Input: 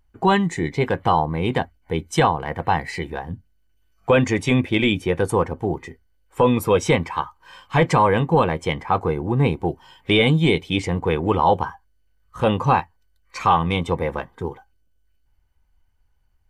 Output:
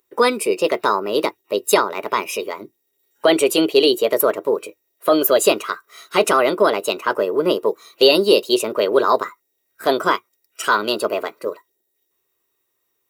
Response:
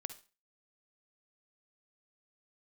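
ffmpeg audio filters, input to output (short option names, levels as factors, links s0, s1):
-af "asetrate=55566,aresample=44100,highpass=f=390:t=q:w=4.1,aemphasis=mode=production:type=75fm,volume=0.841"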